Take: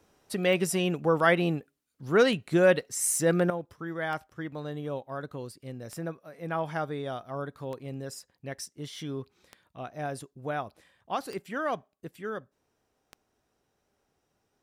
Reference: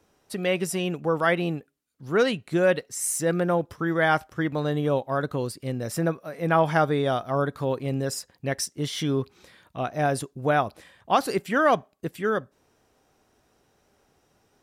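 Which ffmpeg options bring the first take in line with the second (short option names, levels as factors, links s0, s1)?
-af "adeclick=t=4,asetnsamples=n=441:p=0,asendcmd='3.5 volume volume 10.5dB',volume=1"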